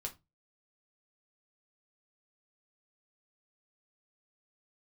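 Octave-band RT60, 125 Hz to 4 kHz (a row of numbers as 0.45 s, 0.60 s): 0.40 s, 0.30 s, 0.20 s, 0.20 s, 0.20 s, 0.20 s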